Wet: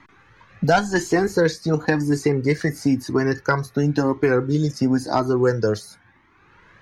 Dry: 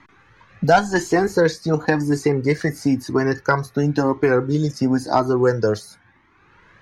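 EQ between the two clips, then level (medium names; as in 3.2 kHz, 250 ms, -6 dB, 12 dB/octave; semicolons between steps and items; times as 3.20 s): dynamic bell 800 Hz, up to -4 dB, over -28 dBFS, Q 0.97; 0.0 dB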